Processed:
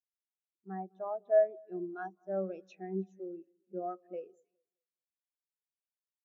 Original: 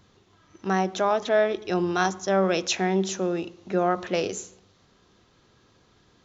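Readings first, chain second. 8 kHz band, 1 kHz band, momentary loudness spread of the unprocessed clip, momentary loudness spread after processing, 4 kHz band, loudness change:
no reading, -16.0 dB, 9 LU, 17 LU, under -35 dB, -11.0 dB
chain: dynamic bell 2.1 kHz, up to +4 dB, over -41 dBFS, Q 1.4; two-band feedback delay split 1.5 kHz, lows 208 ms, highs 313 ms, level -12 dB; spectral contrast expander 2.5:1; trim -9 dB

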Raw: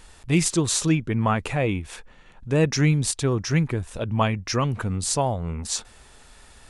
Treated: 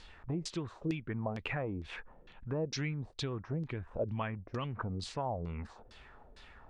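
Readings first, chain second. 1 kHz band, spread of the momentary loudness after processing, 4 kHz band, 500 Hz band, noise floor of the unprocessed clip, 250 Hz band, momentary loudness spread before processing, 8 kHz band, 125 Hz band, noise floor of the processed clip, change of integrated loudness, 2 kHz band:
-13.5 dB, 14 LU, -14.5 dB, -12.5 dB, -51 dBFS, -14.5 dB, 9 LU, -25.5 dB, -14.5 dB, -58 dBFS, -14.5 dB, -13.0 dB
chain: compression 4:1, threshold -29 dBFS, peak gain reduction 12.5 dB; LFO low-pass saw down 2.2 Hz 390–4900 Hz; trim -6.5 dB

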